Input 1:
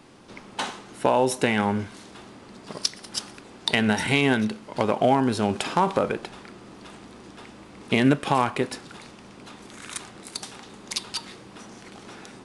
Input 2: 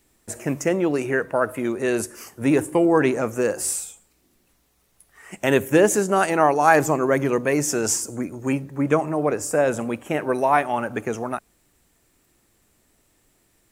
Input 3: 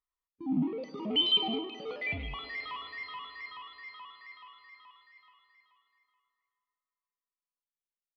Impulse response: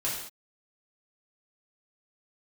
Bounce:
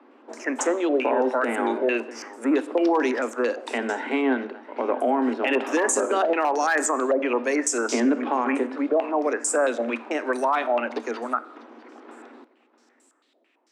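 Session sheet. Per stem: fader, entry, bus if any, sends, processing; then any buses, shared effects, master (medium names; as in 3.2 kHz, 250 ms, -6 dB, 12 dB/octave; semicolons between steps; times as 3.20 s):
0.0 dB, 0.00 s, send -18.5 dB, echo send -17.5 dB, low-pass 1.5 kHz 12 dB/octave
-3.0 dB, 0.00 s, send -22 dB, no echo send, step-sequenced low-pass 9 Hz 630–7900 Hz
mute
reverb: on, pre-delay 3 ms
echo: delay 648 ms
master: hard clipper -5.5 dBFS, distortion -23 dB; Chebyshev high-pass 230 Hz, order 10; peak limiter -13 dBFS, peak gain reduction 10 dB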